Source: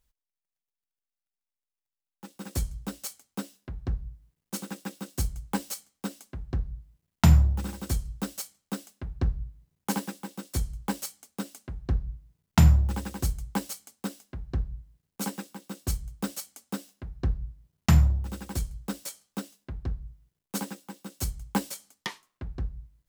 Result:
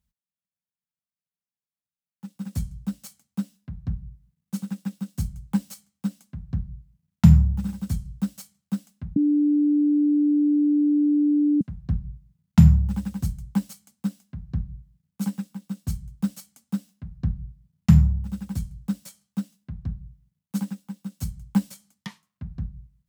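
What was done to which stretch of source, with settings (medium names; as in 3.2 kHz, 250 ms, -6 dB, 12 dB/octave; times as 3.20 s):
9.16–11.61 s: bleep 294 Hz -9 dBFS
whole clip: high-pass 66 Hz; resonant low shelf 260 Hz +9.5 dB, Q 3; trim -6.5 dB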